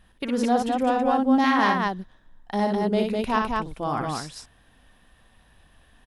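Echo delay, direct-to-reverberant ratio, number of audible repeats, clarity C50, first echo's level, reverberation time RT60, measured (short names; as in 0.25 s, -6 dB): 59 ms, none, 2, none, -4.5 dB, none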